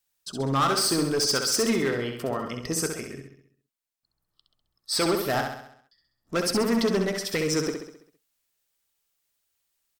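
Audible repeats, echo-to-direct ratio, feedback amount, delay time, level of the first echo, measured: 6, −4.0 dB, 52%, 66 ms, −5.5 dB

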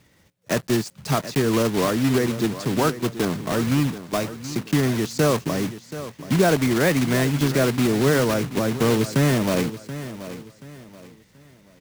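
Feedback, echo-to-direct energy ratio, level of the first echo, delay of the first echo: 33%, −13.0 dB, −13.5 dB, 730 ms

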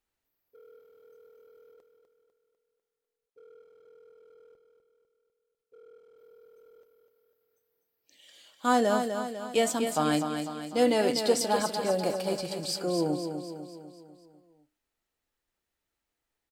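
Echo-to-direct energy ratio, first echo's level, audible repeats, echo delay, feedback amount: −5.5 dB, −7.0 dB, 5, 249 ms, 52%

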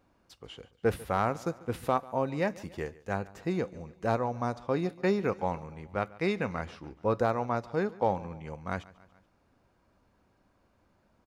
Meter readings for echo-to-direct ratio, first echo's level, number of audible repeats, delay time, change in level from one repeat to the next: −19.5 dB, −21.0 dB, 3, 143 ms, −4.5 dB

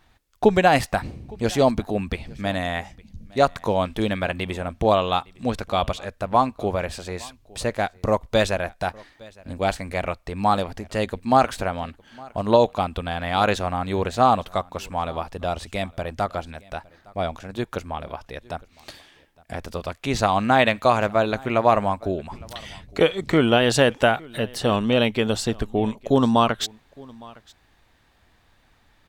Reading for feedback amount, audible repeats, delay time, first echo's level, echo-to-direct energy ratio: repeats not evenly spaced, 1, 861 ms, −24.0 dB, −24.0 dB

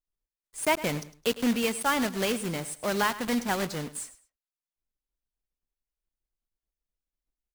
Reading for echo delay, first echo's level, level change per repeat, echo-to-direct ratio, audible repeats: 105 ms, −16.0 dB, −12.5 dB, −16.0 dB, 2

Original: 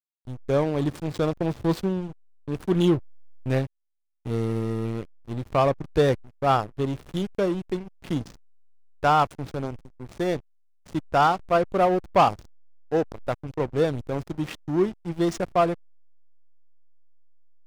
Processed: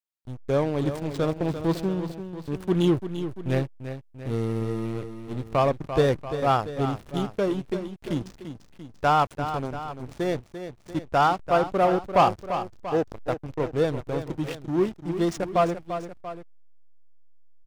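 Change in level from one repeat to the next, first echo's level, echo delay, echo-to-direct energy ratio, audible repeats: −4.5 dB, −10.0 dB, 343 ms, −9.0 dB, 2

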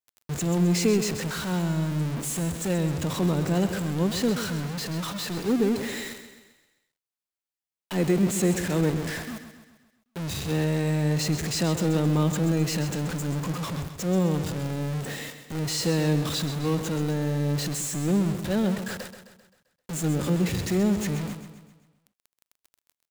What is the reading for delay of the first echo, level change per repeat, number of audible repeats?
131 ms, −6.0 dB, 5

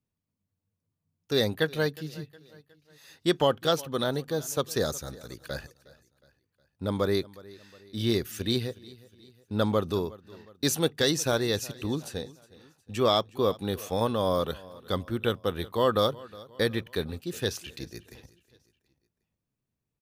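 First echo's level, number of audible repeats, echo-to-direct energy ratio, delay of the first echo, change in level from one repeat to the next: −21.0 dB, 3, −20.0 dB, 363 ms, −6.5 dB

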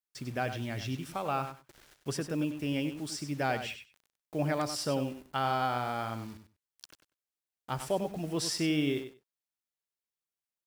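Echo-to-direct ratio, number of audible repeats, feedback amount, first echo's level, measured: −9.5 dB, 2, 15%, −9.5 dB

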